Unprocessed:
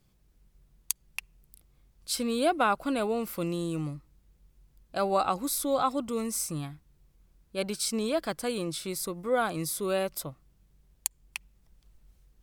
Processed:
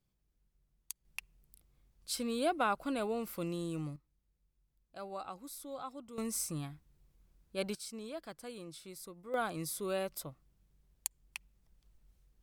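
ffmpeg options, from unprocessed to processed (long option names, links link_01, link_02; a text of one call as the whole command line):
ffmpeg -i in.wav -af "asetnsamples=nb_out_samples=441:pad=0,asendcmd='1.05 volume volume -6.5dB;3.96 volume volume -17dB;6.18 volume volume -5dB;7.75 volume volume -15dB;9.34 volume volume -7dB',volume=-14dB" out.wav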